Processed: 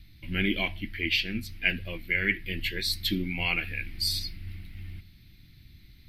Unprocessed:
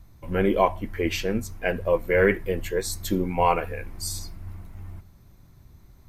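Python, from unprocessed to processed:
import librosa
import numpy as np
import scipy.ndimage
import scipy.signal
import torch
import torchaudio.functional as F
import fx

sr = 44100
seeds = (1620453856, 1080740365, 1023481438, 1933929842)

y = fx.curve_eq(x, sr, hz=(320.0, 480.0, 710.0, 1000.0, 2100.0, 3100.0, 4600.0, 6700.0, 11000.0), db=(0, -18, -12, -18, 11, 14, 12, -10, 1))
y = fx.rider(y, sr, range_db=4, speed_s=0.5)
y = F.gain(torch.from_numpy(y), -5.0).numpy()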